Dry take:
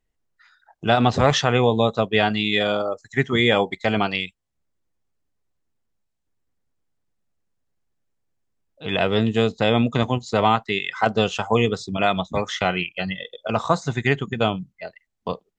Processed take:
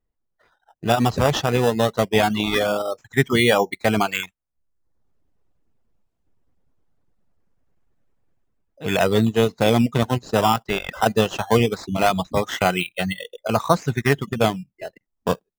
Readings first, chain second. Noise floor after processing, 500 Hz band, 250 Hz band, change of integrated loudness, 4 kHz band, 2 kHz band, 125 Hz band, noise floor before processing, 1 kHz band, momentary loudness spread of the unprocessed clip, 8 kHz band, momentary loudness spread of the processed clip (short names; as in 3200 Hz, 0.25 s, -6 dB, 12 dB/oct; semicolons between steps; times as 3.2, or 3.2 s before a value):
-77 dBFS, +1.0 dB, +1.0 dB, +0.5 dB, -1.5 dB, -0.5 dB, +1.0 dB, -76 dBFS, +0.5 dB, 11 LU, +5.0 dB, 9 LU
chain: AGC gain up to 12.5 dB; reverb removal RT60 0.72 s; in parallel at -3 dB: decimation with a swept rate 14×, swing 100% 0.21 Hz; on the sum: mismatched tape noise reduction decoder only; gain -5 dB